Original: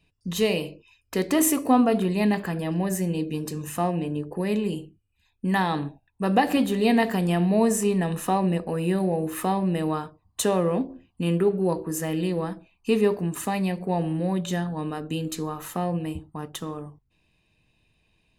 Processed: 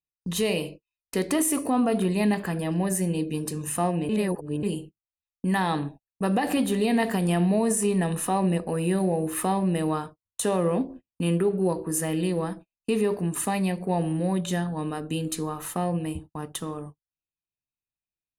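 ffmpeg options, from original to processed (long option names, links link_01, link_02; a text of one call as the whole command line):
ffmpeg -i in.wav -filter_complex "[0:a]asplit=3[link_01][link_02][link_03];[link_01]atrim=end=4.092[link_04];[link_02]atrim=start=4.088:end=4.632,asetpts=PTS-STARTPTS,areverse[link_05];[link_03]atrim=start=4.628[link_06];[link_04][link_05]acrossfade=duration=0.004:curve1=hsin:curve2=hsin[link_07];[link_07][link_06]acrossfade=duration=0.004:curve1=hsin:curve2=hsin,agate=range=-35dB:threshold=-40dB:ratio=16:detection=peak,equalizer=frequency=9600:width=5.8:gain=14,alimiter=limit=-15dB:level=0:latency=1:release=67" out.wav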